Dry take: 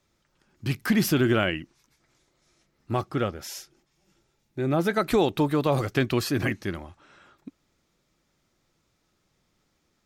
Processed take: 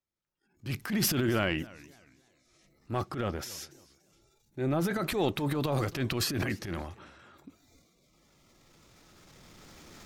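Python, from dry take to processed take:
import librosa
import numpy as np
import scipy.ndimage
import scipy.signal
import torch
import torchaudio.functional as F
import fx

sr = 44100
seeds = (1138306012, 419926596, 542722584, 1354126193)

y = fx.recorder_agc(x, sr, target_db=-14.5, rise_db_per_s=8.1, max_gain_db=30)
y = fx.noise_reduce_blind(y, sr, reduce_db=17)
y = fx.transient(y, sr, attack_db=-10, sustain_db=9)
y = fx.echo_warbled(y, sr, ms=281, feedback_pct=31, rate_hz=2.8, cents=211, wet_db=-21.5)
y = y * 10.0 ** (-6.0 / 20.0)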